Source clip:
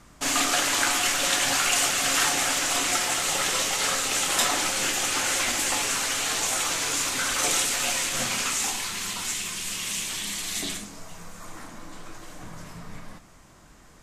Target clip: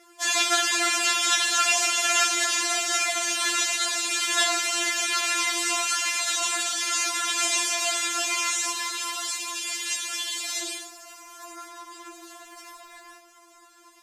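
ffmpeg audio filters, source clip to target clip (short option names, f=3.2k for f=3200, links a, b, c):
-filter_complex "[0:a]highpass=f=62:w=0.5412,highpass=f=62:w=1.3066,lowshelf=f=150:g=-7,bandreject=f=60:t=h:w=6,bandreject=f=120:t=h:w=6,bandreject=f=180:t=h:w=6,bandreject=f=240:t=h:w=6,bandreject=f=300:t=h:w=6,bandreject=f=360:t=h:w=6,asubboost=boost=5:cutoff=110,acrusher=bits=8:mode=log:mix=0:aa=0.000001,acrossover=split=8600[a][b];[b]acompressor=threshold=-45dB:ratio=4:attack=1:release=60[c];[a][c]amix=inputs=2:normalize=0,afftfilt=real='re*4*eq(mod(b,16),0)':imag='im*4*eq(mod(b,16),0)':win_size=2048:overlap=0.75,volume=4dB"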